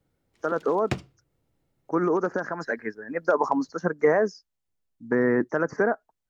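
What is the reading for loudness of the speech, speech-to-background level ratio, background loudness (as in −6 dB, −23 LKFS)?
−26.0 LKFS, 8.5 dB, −34.5 LKFS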